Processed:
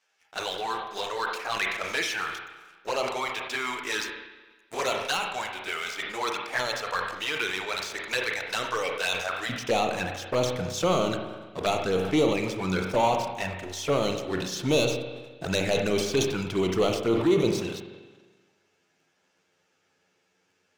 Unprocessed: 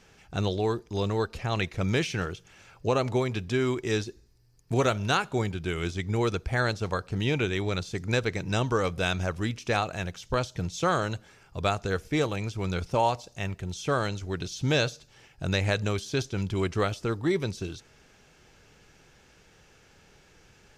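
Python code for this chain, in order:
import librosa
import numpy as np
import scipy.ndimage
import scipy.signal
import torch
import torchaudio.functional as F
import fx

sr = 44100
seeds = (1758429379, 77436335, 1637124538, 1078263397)

y = fx.self_delay(x, sr, depth_ms=0.06)
y = fx.highpass(y, sr, hz=fx.steps((0.0, 800.0), (9.49, 230.0)), slope=12)
y = fx.leveller(y, sr, passes=3)
y = fx.env_flanger(y, sr, rest_ms=11.5, full_db=-17.0)
y = fx.rev_spring(y, sr, rt60_s=1.4, pass_ms=(32, 43), chirp_ms=65, drr_db=5.5)
y = fx.sustainer(y, sr, db_per_s=58.0)
y = y * 10.0 ** (-3.5 / 20.0)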